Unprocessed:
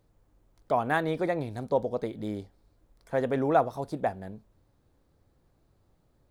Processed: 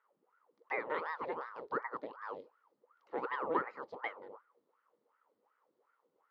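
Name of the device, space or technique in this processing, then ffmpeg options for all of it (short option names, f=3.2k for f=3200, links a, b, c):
voice changer toy: -af "aeval=exprs='val(0)*sin(2*PI*800*n/s+800*0.8/2.7*sin(2*PI*2.7*n/s))':c=same,highpass=440,equalizer=f=480:t=q:w=4:g=8,equalizer=f=700:t=q:w=4:g=-10,equalizer=f=1.6k:t=q:w=4:g=-7,equalizer=f=2.5k:t=q:w=4:g=-7,equalizer=f=3.6k:t=q:w=4:g=-6,lowpass=f=3.9k:w=0.5412,lowpass=f=3.9k:w=1.3066,volume=-4.5dB"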